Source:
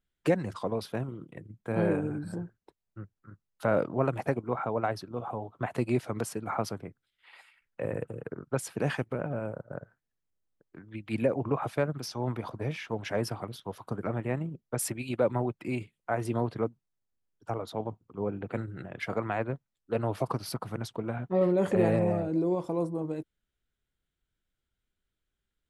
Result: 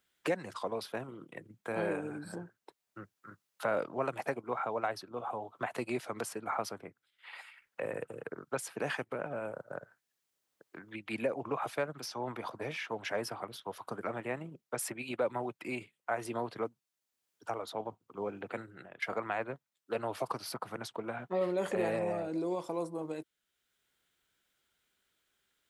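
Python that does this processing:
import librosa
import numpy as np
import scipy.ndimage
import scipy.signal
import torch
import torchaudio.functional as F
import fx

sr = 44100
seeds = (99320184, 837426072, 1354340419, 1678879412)

y = fx.edit(x, sr, fx.fade_out_to(start_s=18.47, length_s=0.55, floor_db=-16.0), tone=tone)
y = fx.highpass(y, sr, hz=200.0, slope=6)
y = fx.low_shelf(y, sr, hz=380.0, db=-10.5)
y = fx.band_squash(y, sr, depth_pct=40)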